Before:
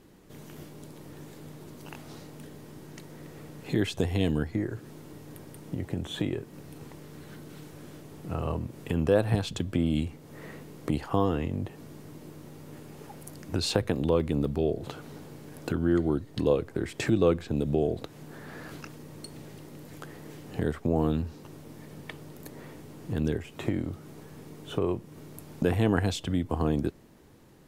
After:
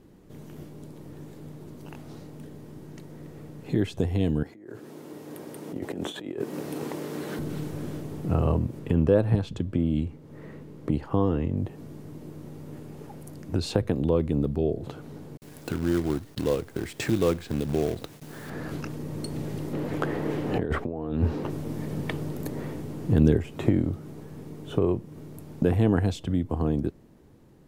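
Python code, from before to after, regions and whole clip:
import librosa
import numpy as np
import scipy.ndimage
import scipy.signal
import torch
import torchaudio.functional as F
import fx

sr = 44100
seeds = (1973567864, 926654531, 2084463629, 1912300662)

y = fx.chain(x, sr, fx.highpass(hz=300.0, slope=12),
    fx.over_compress(threshold_db=-43.0, ratio=-1.0), at=(4.43, 7.39))
y = fx.chain(y, sr, fx.high_shelf(hz=5100.0, db=-7.5),
    fx.notch(hz=720.0, q=11.0), at=(8.79, 11.57))
y = fx.chain(y, sr, fx.gate_hold(open_db=-37.0, close_db=-44.0, hold_ms=71.0, range_db=-21, attack_ms=1.4, release_ms=100.0),
    fx.tilt_shelf(db=-5.5, hz=1200.0),
    fx.quant_companded(bits=4), at=(15.37, 18.5))
y = fx.chain(y, sr, fx.bass_treble(bass_db=-8, treble_db=-12),
    fx.over_compress(threshold_db=-39.0, ratio=-1.0), at=(19.73, 21.5))
y = fx.rider(y, sr, range_db=10, speed_s=2.0)
y = fx.tilt_shelf(y, sr, db=4.5, hz=760.0)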